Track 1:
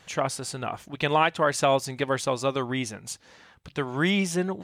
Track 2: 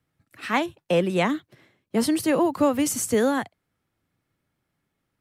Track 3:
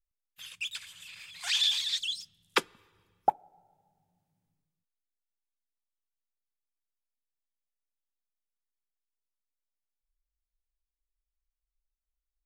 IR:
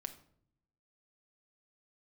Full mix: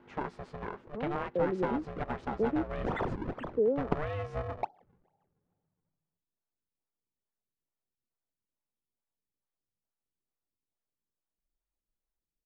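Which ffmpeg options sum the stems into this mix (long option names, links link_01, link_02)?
-filter_complex "[0:a]acompressor=threshold=-23dB:ratio=6,aeval=exprs='val(0)+0.00251*(sin(2*PI*50*n/s)+sin(2*PI*2*50*n/s)/2+sin(2*PI*3*50*n/s)/3+sin(2*PI*4*50*n/s)/4+sin(2*PI*5*50*n/s)/5)':channel_layout=same,aeval=exprs='val(0)*sgn(sin(2*PI*300*n/s))':channel_layout=same,volume=-6.5dB[link_01];[1:a]alimiter=limit=-15.5dB:level=0:latency=1,lowpass=frequency=460:width_type=q:width=4.1,adelay=450,volume=-13dB,asplit=3[link_02][link_03][link_04];[link_02]atrim=end=2.63,asetpts=PTS-STARTPTS,afade=type=out:start_time=2.626:duration=0.004:curve=hsin[link_05];[link_03]atrim=start=2.63:end=3.36,asetpts=PTS-STARTPTS,volume=0[link_06];[link_04]atrim=start=3.36,asetpts=PTS-STARTPTS,afade=type=in:duration=0.004:curve=hsin[link_07];[link_05][link_06][link_07]concat=n=3:v=0:a=1[link_08];[2:a]acrusher=samples=40:mix=1:aa=0.000001:lfo=1:lforange=64:lforate=2.3,adelay=1350,volume=-4.5dB[link_09];[link_01][link_08][link_09]amix=inputs=3:normalize=0,lowpass=1400"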